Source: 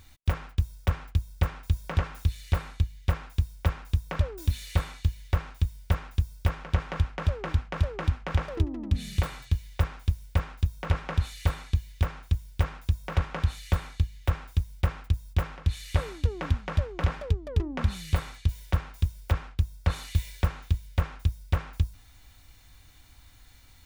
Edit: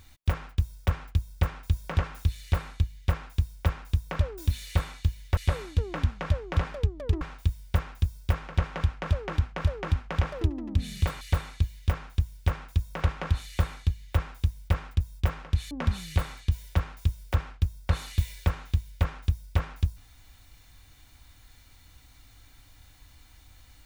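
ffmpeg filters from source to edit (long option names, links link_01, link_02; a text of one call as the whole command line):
ffmpeg -i in.wav -filter_complex "[0:a]asplit=5[link_01][link_02][link_03][link_04][link_05];[link_01]atrim=end=5.372[link_06];[link_02]atrim=start=15.838:end=17.682[link_07];[link_03]atrim=start=5.368:end=9.372[link_08];[link_04]atrim=start=11.338:end=15.842[link_09];[link_05]atrim=start=17.678[link_10];[link_06][link_07]acrossfade=duration=0.004:curve1=hsin:curve2=hsin[link_11];[link_11][link_08]acrossfade=duration=0.004:curve1=hsin:curve2=hsin[link_12];[link_12][link_09]acrossfade=duration=0.004:curve1=hsin:curve2=hsin[link_13];[link_13][link_10]acrossfade=duration=0.004:curve1=hsin:curve2=hsin" out.wav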